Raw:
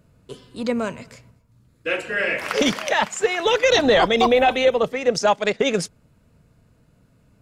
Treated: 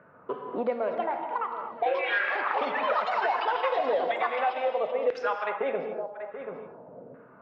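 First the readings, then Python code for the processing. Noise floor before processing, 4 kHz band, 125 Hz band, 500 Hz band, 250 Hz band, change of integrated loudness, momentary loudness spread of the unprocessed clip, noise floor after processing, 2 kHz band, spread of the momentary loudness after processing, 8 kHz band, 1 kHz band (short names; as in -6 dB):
-60 dBFS, -16.5 dB, under -15 dB, -8.0 dB, -15.5 dB, -9.0 dB, 11 LU, -53 dBFS, -7.0 dB, 13 LU, under -30 dB, -3.5 dB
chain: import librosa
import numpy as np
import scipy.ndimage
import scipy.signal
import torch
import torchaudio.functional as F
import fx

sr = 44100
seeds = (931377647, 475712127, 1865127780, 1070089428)

p1 = fx.tilt_eq(x, sr, slope=2.0)
p2 = p1 + fx.echo_single(p1, sr, ms=733, db=-23.0, dry=0)
p3 = fx.filter_lfo_bandpass(p2, sr, shape='saw_down', hz=0.98, low_hz=460.0, high_hz=1700.0, q=2.6)
p4 = fx.echo_pitch(p3, sr, ms=506, semitones=6, count=2, db_per_echo=-3.0)
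p5 = fx.hum_notches(p4, sr, base_hz=60, count=2)
p6 = fx.rev_gated(p5, sr, seeds[0], gate_ms=270, shape='flat', drr_db=5.0)
p7 = fx.env_lowpass(p6, sr, base_hz=780.0, full_db=-19.0)
p8 = fx.air_absorb(p7, sr, metres=310.0)
p9 = fx.band_squash(p8, sr, depth_pct=100)
y = F.gain(torch.from_numpy(p9), -2.0).numpy()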